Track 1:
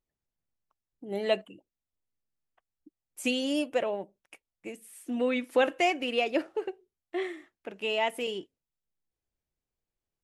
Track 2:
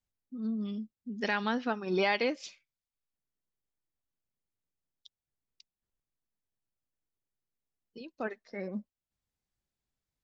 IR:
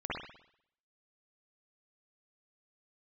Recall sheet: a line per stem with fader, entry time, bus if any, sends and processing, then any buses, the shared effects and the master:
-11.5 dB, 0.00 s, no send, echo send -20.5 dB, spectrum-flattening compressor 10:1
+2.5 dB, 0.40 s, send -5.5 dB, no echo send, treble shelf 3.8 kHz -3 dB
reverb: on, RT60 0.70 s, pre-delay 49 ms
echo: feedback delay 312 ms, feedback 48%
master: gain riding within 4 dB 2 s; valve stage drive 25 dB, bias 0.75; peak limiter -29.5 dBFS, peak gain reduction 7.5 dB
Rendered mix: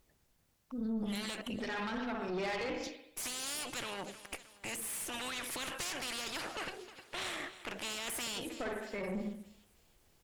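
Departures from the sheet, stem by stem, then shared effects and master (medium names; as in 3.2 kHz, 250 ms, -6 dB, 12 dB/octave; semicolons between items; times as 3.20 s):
stem 1 -11.5 dB -> -0.5 dB; stem 2: missing treble shelf 3.8 kHz -3 dB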